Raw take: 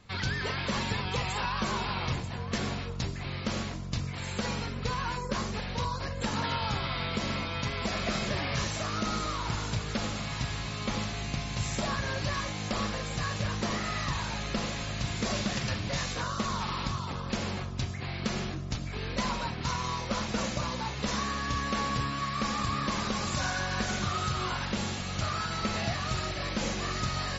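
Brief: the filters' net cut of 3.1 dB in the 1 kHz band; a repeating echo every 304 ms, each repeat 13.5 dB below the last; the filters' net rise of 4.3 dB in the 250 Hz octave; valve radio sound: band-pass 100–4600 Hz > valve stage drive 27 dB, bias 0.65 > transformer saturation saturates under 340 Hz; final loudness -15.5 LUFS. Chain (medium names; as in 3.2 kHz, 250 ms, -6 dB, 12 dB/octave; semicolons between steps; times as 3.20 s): band-pass 100–4600 Hz; peaking EQ 250 Hz +6 dB; peaking EQ 1 kHz -4 dB; feedback delay 304 ms, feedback 21%, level -13.5 dB; valve stage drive 27 dB, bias 0.65; transformer saturation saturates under 340 Hz; trim +22.5 dB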